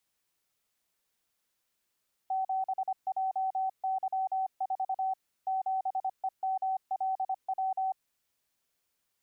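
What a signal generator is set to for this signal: Morse "7JY4 7EMLW" 25 wpm 762 Hz -27.5 dBFS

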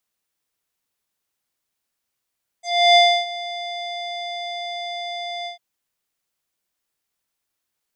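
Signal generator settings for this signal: synth note square F5 12 dB/oct, low-pass 4000 Hz, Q 5.1, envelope 1 oct, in 0.08 s, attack 0.323 s, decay 0.30 s, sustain -18 dB, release 0.12 s, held 2.83 s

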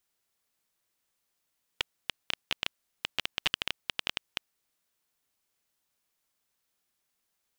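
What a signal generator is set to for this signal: random clicks 11/s -10 dBFS 2.65 s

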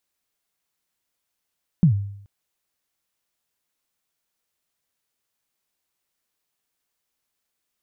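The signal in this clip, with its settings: kick drum length 0.43 s, from 190 Hz, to 100 Hz, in 0.101 s, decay 0.70 s, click off, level -9 dB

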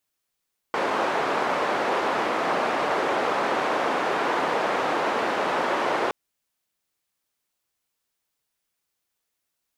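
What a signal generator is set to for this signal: noise band 370–1000 Hz, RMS -24.5 dBFS 5.37 s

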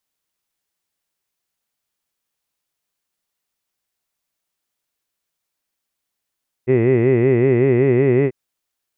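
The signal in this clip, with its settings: formant-synthesis vowel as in hid, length 1.64 s, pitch 121 Hz, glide +1.5 st, vibrato depth 1.45 st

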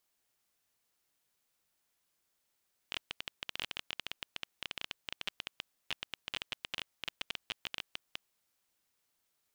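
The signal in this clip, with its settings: random clicks 15/s -19 dBFS 5.28 s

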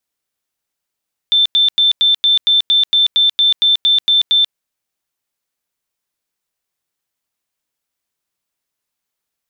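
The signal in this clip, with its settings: tone bursts 3550 Hz, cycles 482, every 0.23 s, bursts 14, -8.5 dBFS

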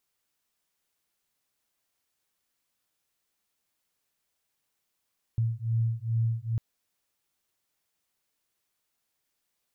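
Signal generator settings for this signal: beating tones 113 Hz, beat 2.4 Hz, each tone -28 dBFS 1.20 s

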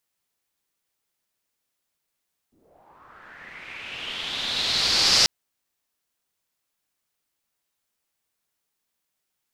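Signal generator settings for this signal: swept filtered noise white, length 2.74 s lowpass, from 240 Hz, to 5100 Hz, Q 4.5, linear, gain ramp +34.5 dB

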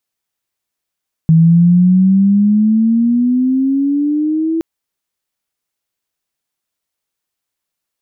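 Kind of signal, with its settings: chirp logarithmic 160 Hz -> 330 Hz -4.5 dBFS -> -13 dBFS 3.32 s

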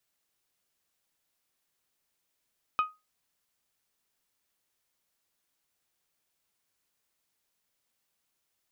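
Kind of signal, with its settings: glass hit bell, lowest mode 1250 Hz, decay 0.23 s, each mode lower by 10 dB, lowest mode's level -19.5 dB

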